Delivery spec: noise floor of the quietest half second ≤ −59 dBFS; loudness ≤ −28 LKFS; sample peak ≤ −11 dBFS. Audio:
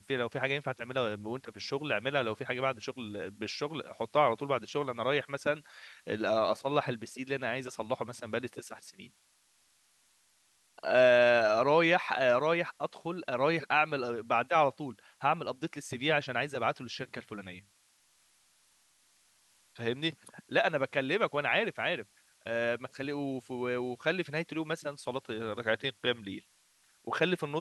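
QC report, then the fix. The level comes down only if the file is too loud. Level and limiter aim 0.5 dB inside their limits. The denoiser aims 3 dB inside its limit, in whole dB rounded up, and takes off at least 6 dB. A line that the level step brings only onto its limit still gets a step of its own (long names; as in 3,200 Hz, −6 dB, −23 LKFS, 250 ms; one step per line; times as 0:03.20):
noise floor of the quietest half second −69 dBFS: in spec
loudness −31.5 LKFS: in spec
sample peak −12.0 dBFS: in spec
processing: no processing needed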